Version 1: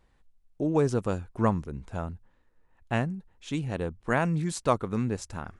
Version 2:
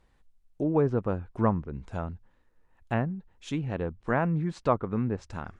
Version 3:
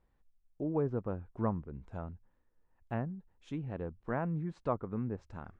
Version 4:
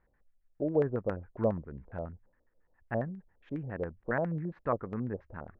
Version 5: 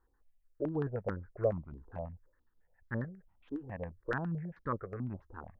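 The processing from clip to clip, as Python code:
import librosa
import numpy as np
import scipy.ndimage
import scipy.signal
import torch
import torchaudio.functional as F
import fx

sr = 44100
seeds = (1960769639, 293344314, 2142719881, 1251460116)

y1 = fx.env_lowpass_down(x, sr, base_hz=1700.0, full_db=-25.0)
y2 = fx.high_shelf(y1, sr, hz=2500.0, db=-12.0)
y2 = y2 * librosa.db_to_amplitude(-7.5)
y3 = fx.filter_lfo_lowpass(y2, sr, shape='square', hz=7.3, low_hz=580.0, high_hz=1800.0, q=3.5)
y4 = fx.phaser_held(y3, sr, hz=4.6, low_hz=610.0, high_hz=2600.0)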